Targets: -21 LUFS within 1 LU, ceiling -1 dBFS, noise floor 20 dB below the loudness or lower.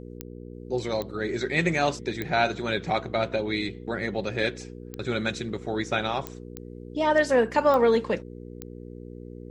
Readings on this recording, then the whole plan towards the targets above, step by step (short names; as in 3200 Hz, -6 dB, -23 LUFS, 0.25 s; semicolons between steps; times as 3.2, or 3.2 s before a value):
clicks 8; hum 60 Hz; harmonics up to 480 Hz; hum level -38 dBFS; loudness -26.5 LUFS; peak -8.5 dBFS; loudness target -21.0 LUFS
-> de-click; de-hum 60 Hz, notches 8; gain +5.5 dB